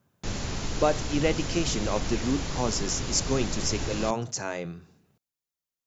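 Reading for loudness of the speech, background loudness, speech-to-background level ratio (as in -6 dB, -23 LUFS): -29.0 LUFS, -33.5 LUFS, 4.5 dB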